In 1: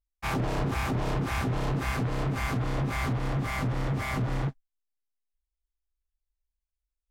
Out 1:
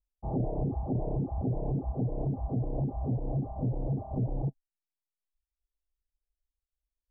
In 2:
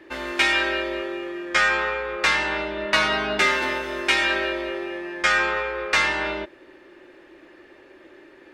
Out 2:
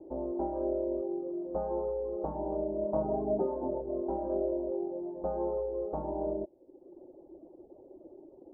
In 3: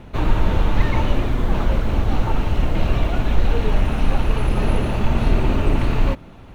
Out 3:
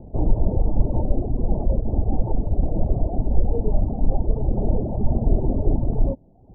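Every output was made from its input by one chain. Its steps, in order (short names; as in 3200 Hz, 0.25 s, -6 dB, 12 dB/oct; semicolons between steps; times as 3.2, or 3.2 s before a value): reverb removal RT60 0.87 s; steep low-pass 780 Hz 48 dB/oct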